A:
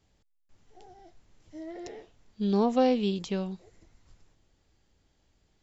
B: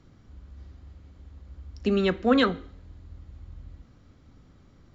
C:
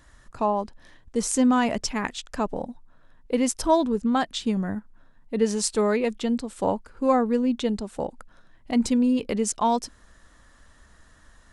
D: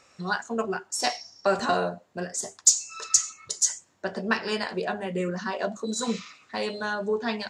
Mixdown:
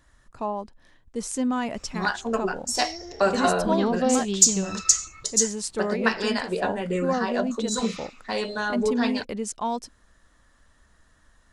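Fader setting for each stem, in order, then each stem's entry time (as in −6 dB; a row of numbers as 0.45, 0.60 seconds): 0.0, −11.0, −5.5, +2.0 decibels; 1.25, 1.40, 0.00, 1.75 seconds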